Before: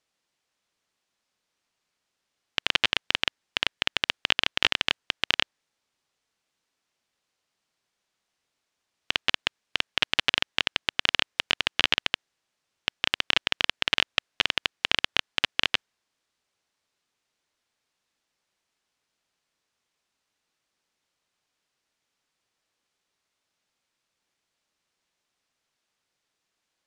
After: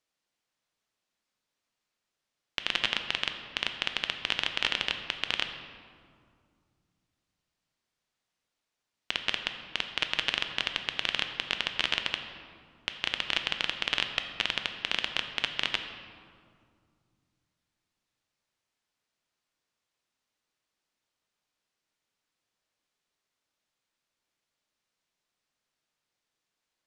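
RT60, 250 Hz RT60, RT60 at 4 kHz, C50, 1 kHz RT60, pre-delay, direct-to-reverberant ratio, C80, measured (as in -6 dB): 2.2 s, 3.1 s, 1.2 s, 7.5 dB, 2.1 s, 3 ms, 6.0 dB, 8.5 dB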